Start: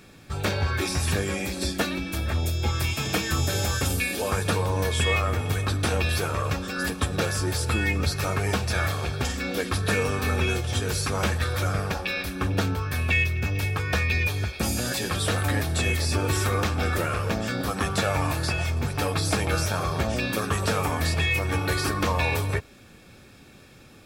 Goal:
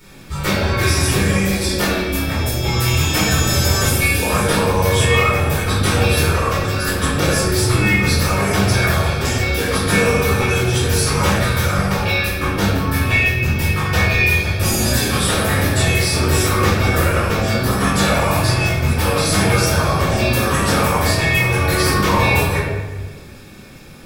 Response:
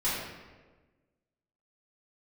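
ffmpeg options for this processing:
-filter_complex "[0:a]highshelf=frequency=8800:gain=9[link_01];[1:a]atrim=start_sample=2205[link_02];[link_01][link_02]afir=irnorm=-1:irlink=0"

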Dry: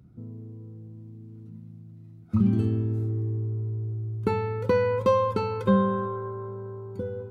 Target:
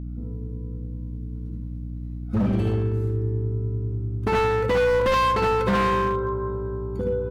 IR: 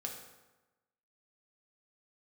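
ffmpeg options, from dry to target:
-af "adynamicequalizer=threshold=0.00708:dfrequency=2100:dqfactor=0.74:tfrequency=2100:tqfactor=0.74:attack=5:release=100:ratio=0.375:range=3:mode=boostabove:tftype=bell,aecho=1:1:59|75:0.473|0.708,asoftclip=type=hard:threshold=-21.5dB,aeval=exprs='val(0)+0.02*(sin(2*PI*60*n/s)+sin(2*PI*2*60*n/s)/2+sin(2*PI*3*60*n/s)/3+sin(2*PI*4*60*n/s)/4+sin(2*PI*5*60*n/s)/5)':channel_layout=same,volume=3dB"

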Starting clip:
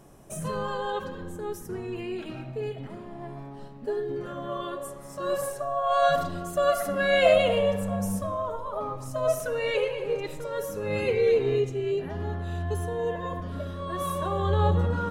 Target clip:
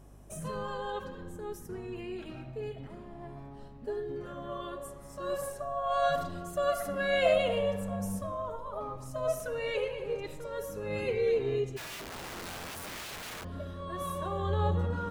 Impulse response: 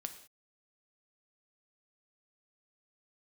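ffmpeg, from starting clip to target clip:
-filter_complex "[0:a]aeval=exprs='val(0)+0.00447*(sin(2*PI*50*n/s)+sin(2*PI*2*50*n/s)/2+sin(2*PI*3*50*n/s)/3+sin(2*PI*4*50*n/s)/4+sin(2*PI*5*50*n/s)/5)':channel_layout=same,asplit=3[link_01][link_02][link_03];[link_01]afade=type=out:start_time=11.76:duration=0.02[link_04];[link_02]aeval=exprs='(mod(35.5*val(0)+1,2)-1)/35.5':channel_layout=same,afade=type=in:start_time=11.76:duration=0.02,afade=type=out:start_time=13.43:duration=0.02[link_05];[link_03]afade=type=in:start_time=13.43:duration=0.02[link_06];[link_04][link_05][link_06]amix=inputs=3:normalize=0,volume=-6dB"

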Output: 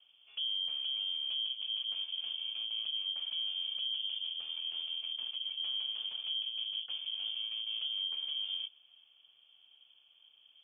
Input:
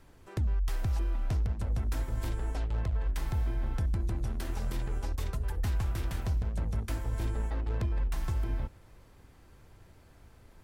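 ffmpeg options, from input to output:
ffmpeg -i in.wav -filter_complex "[0:a]asuperstop=centerf=1400:order=4:qfactor=0.96,aeval=exprs='val(0)*sin(2*PI*330*n/s)':channel_layout=same,lowpass=frequency=3000:width_type=q:width=0.5098,lowpass=frequency=3000:width_type=q:width=0.6013,lowpass=frequency=3000:width_type=q:width=0.9,lowpass=frequency=3000:width_type=q:width=2.563,afreqshift=-3500,acrossover=split=340|2600[link_01][link_02][link_03];[link_01]acrusher=bits=2:mode=log:mix=0:aa=0.000001[link_04];[link_04][link_02][link_03]amix=inputs=3:normalize=0,volume=-5dB" out.wav

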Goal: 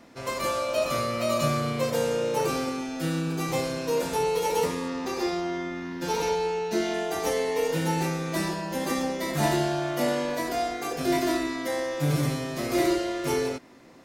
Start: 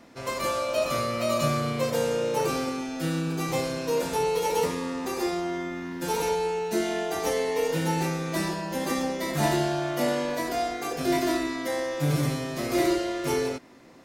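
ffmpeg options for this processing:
ffmpeg -i in.wav -filter_complex "[0:a]asettb=1/sr,asplit=3[link_01][link_02][link_03];[link_01]atrim=end=4.884[link_04];[link_02]atrim=start=4.88:end=6.94,asetpts=PTS-STARTPTS,afade=type=in:duration=0.004:curve=qsin,afade=type=out:start_time=2.056:duration=0.004:curve=qsin,highshelf=frequency=6900:width_type=q:width=1.5:gain=-6[link_05];[link_03]atrim=start=6.936[link_06];[link_04][link_05]acrossfade=duration=0.004:curve1=hsin:curve2=qsin[link_07];[link_07][link_06]acrossfade=duration=0.004:curve1=qsin:curve2=hsin" out.wav

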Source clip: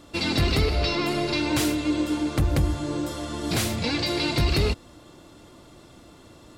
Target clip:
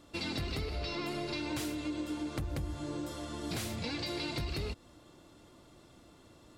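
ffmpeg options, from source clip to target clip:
ffmpeg -i in.wav -af "acompressor=threshold=-24dB:ratio=6,volume=-9dB" out.wav

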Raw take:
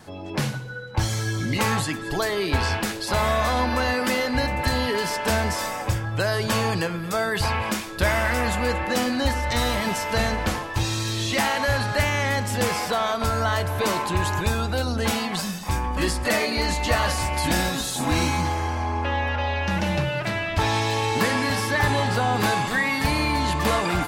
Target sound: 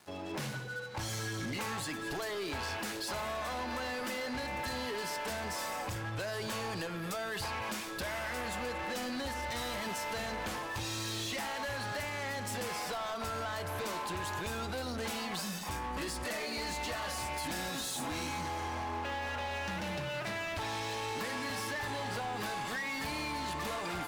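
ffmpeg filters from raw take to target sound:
ffmpeg -i in.wav -af "aeval=exprs='sgn(val(0))*max(abs(val(0))-0.00501,0)':channel_layout=same,lowshelf=frequency=150:gain=-9.5,acompressor=threshold=-29dB:ratio=6,asoftclip=type=tanh:threshold=-33.5dB" out.wav

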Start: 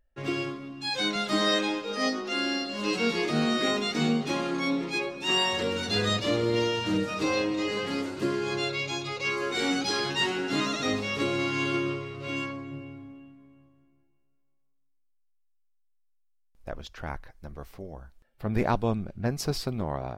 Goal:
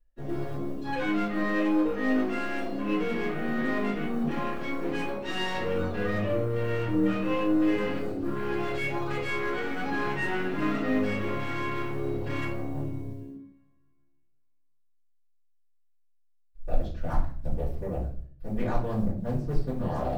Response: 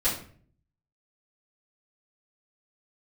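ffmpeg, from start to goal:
-filter_complex "[0:a]acrossover=split=2800[link_01][link_02];[link_02]acompressor=threshold=-45dB:ratio=4:attack=1:release=60[link_03];[link_01][link_03]amix=inputs=2:normalize=0,afwtdn=0.02,areverse,acompressor=threshold=-36dB:ratio=20,areverse,aeval=exprs='0.0376*(cos(1*acos(clip(val(0)/0.0376,-1,1)))-cos(1*PI/2))+0.00188*(cos(8*acos(clip(val(0)/0.0376,-1,1)))-cos(8*PI/2))':channel_layout=same,acrusher=bits=9:mode=log:mix=0:aa=0.000001[link_04];[1:a]atrim=start_sample=2205[link_05];[link_04][link_05]afir=irnorm=-1:irlink=0"

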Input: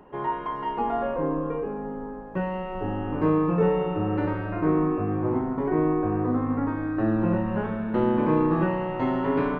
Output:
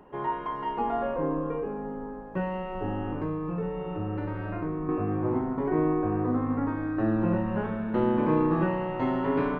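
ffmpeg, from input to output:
ffmpeg -i in.wav -filter_complex "[0:a]asettb=1/sr,asplit=3[link_01][link_02][link_03];[link_01]atrim=end=3.124[link_04];[link_02]atrim=start=3.12:end=4.89,asetpts=PTS-STARTPTS,afade=type=in:duration=0.004:curve=qsin,afade=type=out:start_time=1.766:duration=0.004:curve=qsin,acrossover=split=130[link_05][link_06];[link_06]acompressor=threshold=-29dB:ratio=6[link_07];[link_05][link_07]amix=inputs=2:normalize=0[link_08];[link_03]atrim=start=4.886[link_09];[link_04][link_08]acrossfade=duration=0.004:curve1=hsin:curve2=qsin[link_10];[link_10][link_09]acrossfade=duration=0.004:curve1=qsin:curve2=hsin,volume=-2dB" out.wav

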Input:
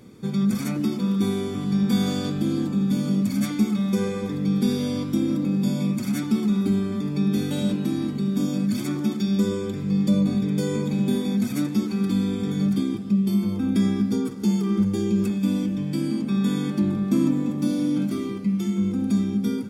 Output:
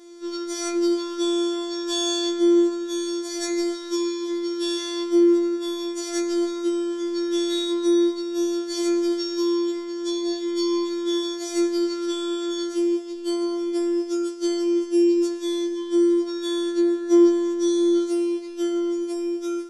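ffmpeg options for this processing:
ffmpeg -i in.wav -af "highpass=110,equalizer=frequency=500:width_type=q:width=4:gain=7,equalizer=frequency=2300:width_type=q:width=4:gain=-6,equalizer=frequency=5900:width_type=q:width=4:gain=8,lowpass=frequency=9100:width=0.5412,lowpass=frequency=9100:width=1.3066,afftfilt=real='hypot(re,im)*cos(PI*b)':imag='0':win_size=1024:overlap=0.75,afftfilt=real='re*4*eq(mod(b,16),0)':imag='im*4*eq(mod(b,16),0)':win_size=2048:overlap=0.75,volume=2dB" out.wav

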